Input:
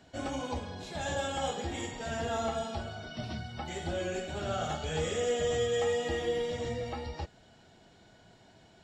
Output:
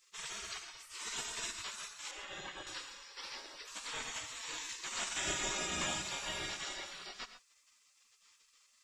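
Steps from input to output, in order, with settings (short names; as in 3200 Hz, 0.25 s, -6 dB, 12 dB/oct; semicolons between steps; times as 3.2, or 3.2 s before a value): 2.11–2.67 LPF 1100 Hz 6 dB/oct; spectral gate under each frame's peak -25 dB weak; non-linear reverb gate 0.15 s rising, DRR 9.5 dB; gain +7.5 dB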